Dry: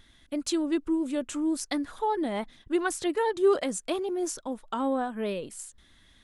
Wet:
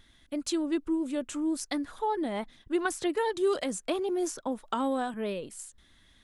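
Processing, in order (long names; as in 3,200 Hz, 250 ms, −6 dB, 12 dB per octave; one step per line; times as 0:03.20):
0:02.85–0:05.14: multiband upward and downward compressor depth 70%
level −2 dB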